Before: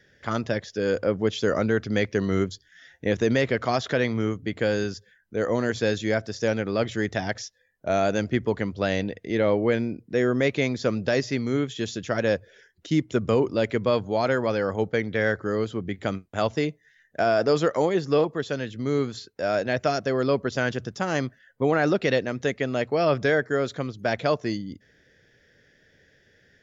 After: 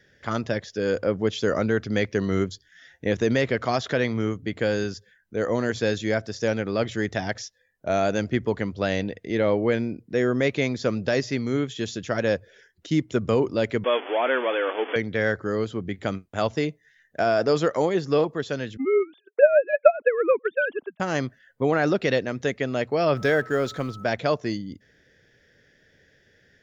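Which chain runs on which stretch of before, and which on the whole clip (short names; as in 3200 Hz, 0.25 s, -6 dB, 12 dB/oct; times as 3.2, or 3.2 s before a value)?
13.84–14.96 zero-crossing step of -26 dBFS + brick-wall FIR band-pass 240–3500 Hz + tilt +2.5 dB/oct
18.77–21 sine-wave speech + transient shaper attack +11 dB, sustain -8 dB
23.15–24.03 G.711 law mismatch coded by mu + whine 1300 Hz -42 dBFS
whole clip: dry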